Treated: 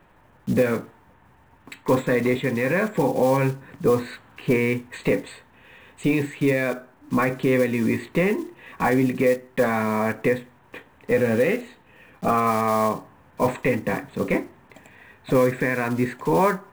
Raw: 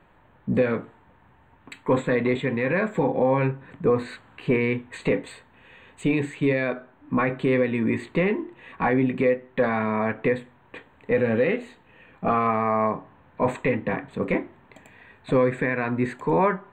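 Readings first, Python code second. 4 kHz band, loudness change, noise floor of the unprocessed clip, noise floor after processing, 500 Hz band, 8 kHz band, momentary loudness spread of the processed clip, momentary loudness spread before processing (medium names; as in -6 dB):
+3.5 dB, +1.5 dB, -57 dBFS, -55 dBFS, +1.5 dB, no reading, 8 LU, 8 LU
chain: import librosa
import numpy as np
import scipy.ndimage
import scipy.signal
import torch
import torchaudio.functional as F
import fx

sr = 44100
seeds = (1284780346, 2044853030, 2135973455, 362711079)

y = fx.block_float(x, sr, bits=5)
y = F.gain(torch.from_numpy(y), 1.5).numpy()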